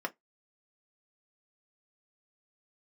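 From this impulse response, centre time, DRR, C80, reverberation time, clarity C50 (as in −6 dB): 4 ms, 2.5 dB, 40.5 dB, 0.15 s, 26.0 dB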